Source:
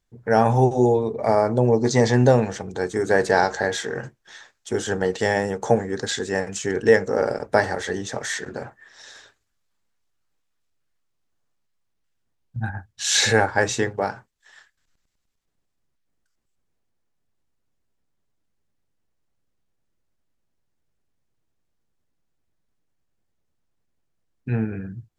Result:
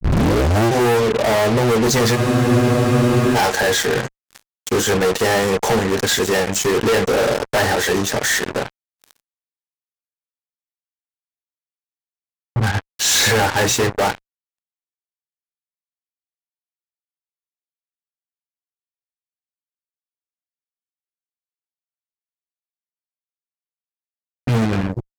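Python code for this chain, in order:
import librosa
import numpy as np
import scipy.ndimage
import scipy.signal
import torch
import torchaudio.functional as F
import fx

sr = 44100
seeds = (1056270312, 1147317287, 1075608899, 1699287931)

y = fx.tape_start_head(x, sr, length_s=0.72)
y = fx.fuzz(y, sr, gain_db=32.0, gate_db=-38.0)
y = fx.cheby_harmonics(y, sr, harmonics=(4, 7), levels_db=(-29, -17), full_scale_db=-8.0)
y = fx.spec_freeze(y, sr, seeds[0], at_s=2.19, hold_s=1.17)
y = y * 10.0 ** (-2.0 / 20.0)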